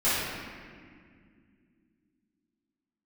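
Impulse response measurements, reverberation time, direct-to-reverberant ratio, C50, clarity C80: 2.1 s, −14.5 dB, −3.5 dB, −0.5 dB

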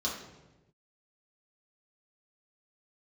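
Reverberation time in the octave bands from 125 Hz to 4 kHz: 1.3, 1.3, 1.2, 0.95, 0.90, 0.75 seconds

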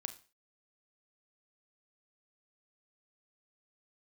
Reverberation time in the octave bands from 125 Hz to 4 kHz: 0.30, 0.35, 0.35, 0.35, 0.35, 0.35 seconds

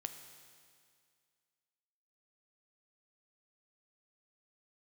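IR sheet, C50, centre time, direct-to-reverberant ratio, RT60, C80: 8.0 dB, 29 ms, 6.5 dB, 2.1 s, 9.0 dB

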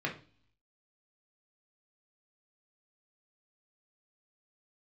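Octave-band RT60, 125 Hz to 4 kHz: 0.80, 0.65, 0.40, 0.40, 0.40, 0.60 seconds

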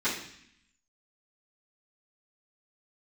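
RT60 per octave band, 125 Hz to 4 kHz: 0.90, 0.95, 0.60, 0.70, 0.90, 0.85 seconds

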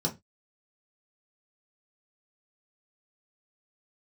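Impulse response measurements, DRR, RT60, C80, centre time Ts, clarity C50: −1.0 dB, 0.20 s, 25.5 dB, 12 ms, 17.0 dB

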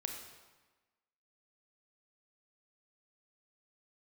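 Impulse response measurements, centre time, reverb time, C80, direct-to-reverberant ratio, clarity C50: 39 ms, 1.2 s, 6.5 dB, 3.0 dB, 5.0 dB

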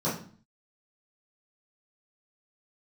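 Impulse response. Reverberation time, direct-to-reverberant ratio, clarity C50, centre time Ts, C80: 0.45 s, −11.0 dB, 6.0 dB, 35 ms, 11.0 dB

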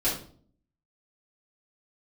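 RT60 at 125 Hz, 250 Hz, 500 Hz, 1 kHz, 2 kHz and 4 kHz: 0.75, 0.75, 0.55, 0.45, 0.35, 0.35 seconds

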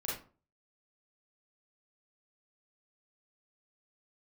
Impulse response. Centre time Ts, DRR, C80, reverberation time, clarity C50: 46 ms, −6.5 dB, 9.0 dB, 0.40 s, 2.0 dB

